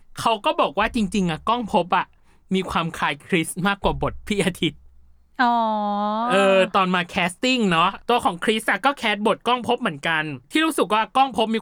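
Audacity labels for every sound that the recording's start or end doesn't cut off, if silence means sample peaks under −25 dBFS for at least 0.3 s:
2.510000	4.690000	sound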